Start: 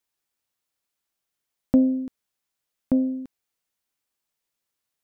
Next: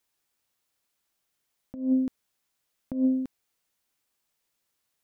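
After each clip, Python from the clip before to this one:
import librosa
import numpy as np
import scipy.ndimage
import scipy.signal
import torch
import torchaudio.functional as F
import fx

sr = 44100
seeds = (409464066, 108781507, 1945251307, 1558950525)

y = fx.over_compress(x, sr, threshold_db=-24.0, ratio=-0.5)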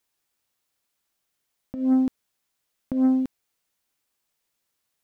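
y = fx.leveller(x, sr, passes=1)
y = y * 10.0 ** (2.5 / 20.0)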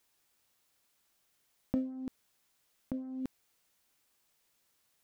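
y = fx.over_compress(x, sr, threshold_db=-32.0, ratio=-1.0)
y = y * 10.0 ** (-6.0 / 20.0)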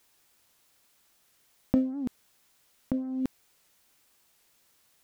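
y = fx.record_warp(x, sr, rpm=78.0, depth_cents=160.0)
y = y * 10.0 ** (8.0 / 20.0)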